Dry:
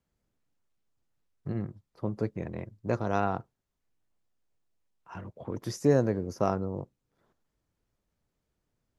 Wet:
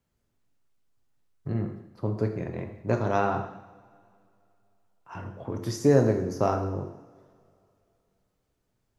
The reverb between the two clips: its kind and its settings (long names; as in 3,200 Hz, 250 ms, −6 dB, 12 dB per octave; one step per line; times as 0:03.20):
coupled-rooms reverb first 0.85 s, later 2.8 s, from −21 dB, DRR 3.5 dB
level +2 dB